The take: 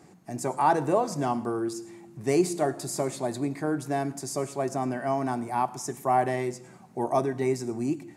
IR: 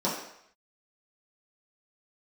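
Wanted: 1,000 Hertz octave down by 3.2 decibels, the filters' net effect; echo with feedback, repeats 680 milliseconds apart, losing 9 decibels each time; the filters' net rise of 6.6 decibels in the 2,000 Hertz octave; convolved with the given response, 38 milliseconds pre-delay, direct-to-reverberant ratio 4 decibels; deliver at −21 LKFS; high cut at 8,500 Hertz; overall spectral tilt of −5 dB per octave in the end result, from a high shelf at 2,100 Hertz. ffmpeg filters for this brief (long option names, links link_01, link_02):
-filter_complex "[0:a]lowpass=8500,equalizer=frequency=1000:width_type=o:gain=-7,equalizer=frequency=2000:width_type=o:gain=8.5,highshelf=frequency=2100:gain=4,aecho=1:1:680|1360|2040|2720:0.355|0.124|0.0435|0.0152,asplit=2[link_01][link_02];[1:a]atrim=start_sample=2205,adelay=38[link_03];[link_02][link_03]afir=irnorm=-1:irlink=0,volume=-14.5dB[link_04];[link_01][link_04]amix=inputs=2:normalize=0,volume=5dB"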